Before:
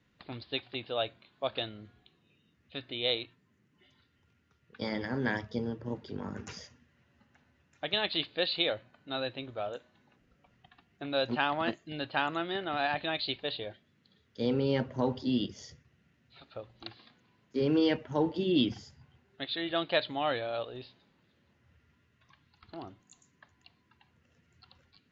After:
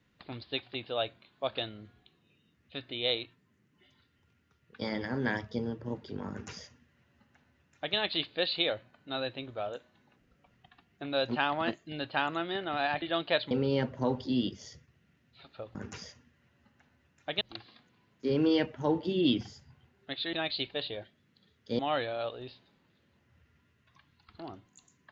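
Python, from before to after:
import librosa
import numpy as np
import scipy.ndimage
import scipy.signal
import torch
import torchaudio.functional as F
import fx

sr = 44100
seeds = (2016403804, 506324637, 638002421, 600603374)

y = fx.edit(x, sr, fx.duplicate(start_s=6.3, length_s=1.66, to_s=16.72),
    fx.swap(start_s=13.02, length_s=1.46, other_s=19.64, other_length_s=0.49), tone=tone)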